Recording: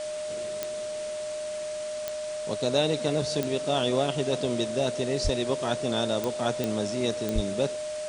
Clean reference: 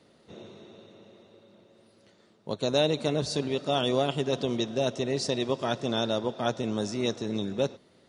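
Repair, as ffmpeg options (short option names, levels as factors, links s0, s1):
-filter_complex "[0:a]adeclick=t=4,bandreject=f=610:w=30,asplit=3[s0][s1][s2];[s0]afade=t=out:st=5.23:d=0.02[s3];[s1]highpass=f=140:w=0.5412,highpass=f=140:w=1.3066,afade=t=in:st=5.23:d=0.02,afade=t=out:st=5.35:d=0.02[s4];[s2]afade=t=in:st=5.35:d=0.02[s5];[s3][s4][s5]amix=inputs=3:normalize=0,asplit=3[s6][s7][s8];[s6]afade=t=out:st=7.34:d=0.02[s9];[s7]highpass=f=140:w=0.5412,highpass=f=140:w=1.3066,afade=t=in:st=7.34:d=0.02,afade=t=out:st=7.46:d=0.02[s10];[s8]afade=t=in:st=7.46:d=0.02[s11];[s9][s10][s11]amix=inputs=3:normalize=0,afwtdn=0.0089"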